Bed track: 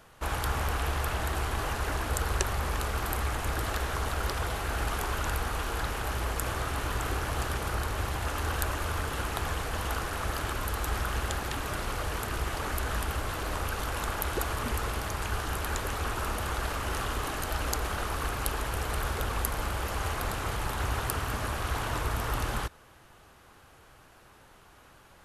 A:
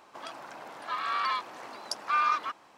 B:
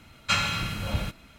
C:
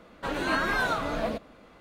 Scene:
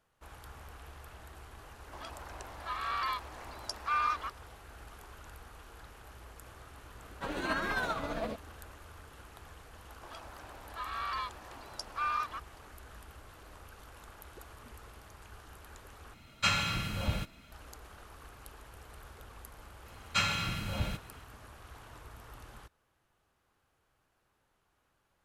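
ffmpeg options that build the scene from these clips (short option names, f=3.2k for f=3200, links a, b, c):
-filter_complex "[1:a]asplit=2[a][b];[2:a]asplit=2[c][d];[0:a]volume=-20dB[e];[3:a]tremolo=f=15:d=0.38[f];[b]bandreject=f=2.1k:w=22[g];[e]asplit=2[h][i];[h]atrim=end=16.144[j];[c]atrim=end=1.38,asetpts=PTS-STARTPTS,volume=-4dB[k];[i]atrim=start=17.516[l];[a]atrim=end=2.77,asetpts=PTS-STARTPTS,volume=-4.5dB,afade=t=in:d=0.004:c=hsin,afade=t=out:st=2.766:d=0.004:c=hsin,adelay=1780[m];[f]atrim=end=1.8,asetpts=PTS-STARTPTS,volume=-5dB,afade=t=in:d=0.004:c=hsin,afade=t=out:st=1.796:d=0.004:c=hsin,adelay=307818S[n];[g]atrim=end=2.77,asetpts=PTS-STARTPTS,volume=-7dB,afade=t=in:d=0.004:c=hsin,afade=t=out:st=2.766:d=0.004:c=hsin,adelay=9880[o];[d]atrim=end=1.38,asetpts=PTS-STARTPTS,volume=-5dB,afade=t=in:d=0.004:c=hsin,afade=t=out:st=1.376:d=0.004:c=hsin,adelay=19860[p];[j][k]acrossfade=d=0.004:c1=hsin:c2=hsin[q];[q][l]acrossfade=d=0.004:c1=hsin:c2=hsin[r];[r][m][n][o][p]amix=inputs=5:normalize=0"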